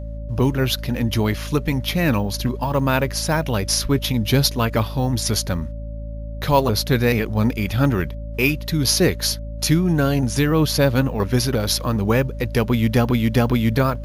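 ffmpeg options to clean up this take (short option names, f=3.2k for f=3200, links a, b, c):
-af "bandreject=f=54.5:t=h:w=4,bandreject=f=109:t=h:w=4,bandreject=f=163.5:t=h:w=4,bandreject=f=218:t=h:w=4,bandreject=f=272.5:t=h:w=4,bandreject=f=580:w=30"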